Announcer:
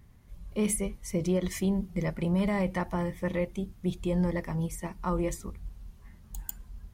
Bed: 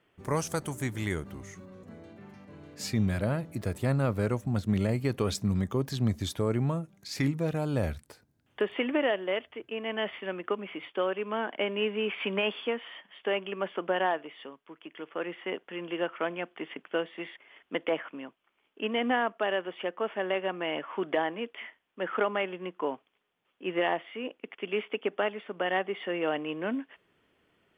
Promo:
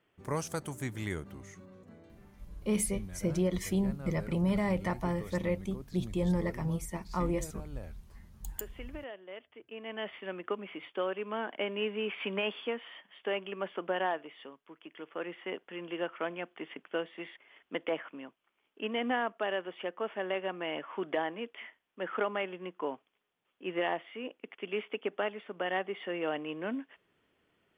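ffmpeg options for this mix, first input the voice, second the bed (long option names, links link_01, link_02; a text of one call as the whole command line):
ffmpeg -i stem1.wav -i stem2.wav -filter_complex "[0:a]adelay=2100,volume=-2dB[link_01];[1:a]volume=8.5dB,afade=type=out:start_time=1.68:duration=0.95:silence=0.237137,afade=type=in:start_time=9.27:duration=1.12:silence=0.223872[link_02];[link_01][link_02]amix=inputs=2:normalize=0" out.wav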